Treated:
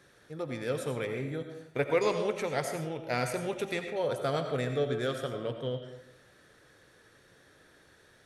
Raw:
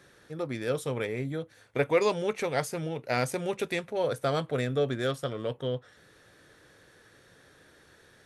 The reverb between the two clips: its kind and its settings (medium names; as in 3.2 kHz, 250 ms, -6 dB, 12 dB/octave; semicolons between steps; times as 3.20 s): algorithmic reverb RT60 0.8 s, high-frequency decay 0.6×, pre-delay 50 ms, DRR 6 dB; trim -3 dB